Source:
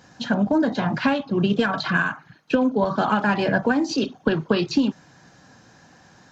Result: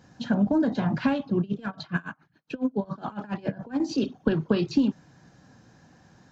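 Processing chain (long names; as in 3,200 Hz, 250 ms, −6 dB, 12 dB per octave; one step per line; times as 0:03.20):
low-shelf EQ 430 Hz +9 dB
0:01.40–0:03.80: tremolo with a sine in dB 7.2 Hz, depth 25 dB
level −8.5 dB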